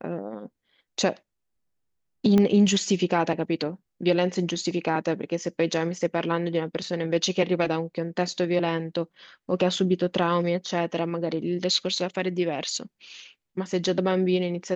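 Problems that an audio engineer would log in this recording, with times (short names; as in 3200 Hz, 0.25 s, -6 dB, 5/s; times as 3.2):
2.38 pop -11 dBFS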